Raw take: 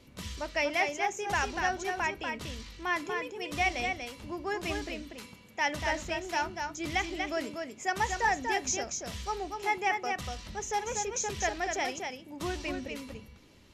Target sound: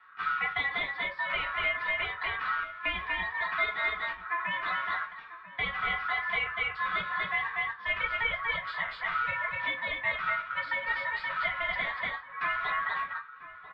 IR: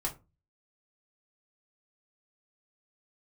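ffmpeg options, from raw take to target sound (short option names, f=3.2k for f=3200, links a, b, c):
-filter_complex "[0:a]agate=range=-10dB:threshold=-41dB:ratio=16:detection=peak,aeval=exprs='val(0)*sin(2*PI*1600*n/s)':c=same,equalizer=f=1.4k:t=o:w=0.45:g=4,acompressor=threshold=-38dB:ratio=6,equalizer=f=125:t=o:w=1:g=10,equalizer=f=250:t=o:w=1:g=-6,equalizer=f=500:t=o:w=1:g=-12,equalizer=f=1k:t=o:w=1:g=-6,equalizer=f=2k:t=o:w=1:g=7,asplit=2[a][b];[b]adelay=991.3,volume=-13dB,highshelf=f=4k:g=-22.3[c];[a][c]amix=inputs=2:normalize=0[d];[1:a]atrim=start_sample=2205,asetrate=52920,aresample=44100[e];[d][e]afir=irnorm=-1:irlink=0,highpass=f=230:t=q:w=0.5412,highpass=f=230:t=q:w=1.307,lowpass=f=3.6k:t=q:w=0.5176,lowpass=f=3.6k:t=q:w=0.7071,lowpass=f=3.6k:t=q:w=1.932,afreqshift=-220,volume=8.5dB"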